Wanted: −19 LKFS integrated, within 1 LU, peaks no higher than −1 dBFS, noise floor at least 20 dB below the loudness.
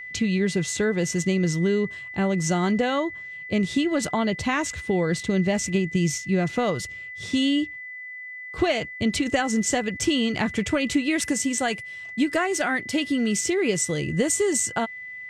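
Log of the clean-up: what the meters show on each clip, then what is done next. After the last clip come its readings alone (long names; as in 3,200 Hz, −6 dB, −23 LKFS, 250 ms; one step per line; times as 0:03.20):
interfering tone 2,000 Hz; level of the tone −35 dBFS; integrated loudness −24.5 LKFS; sample peak −9.5 dBFS; target loudness −19.0 LKFS
→ notch filter 2,000 Hz, Q 30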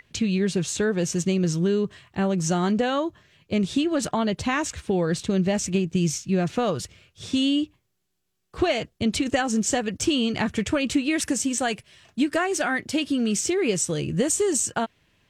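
interfering tone none found; integrated loudness −24.5 LKFS; sample peak −9.5 dBFS; target loudness −19.0 LKFS
→ level +5.5 dB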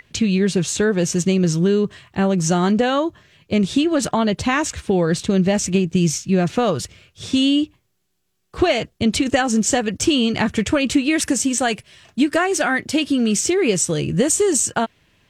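integrated loudness −19.0 LKFS; sample peak −4.0 dBFS; background noise floor −68 dBFS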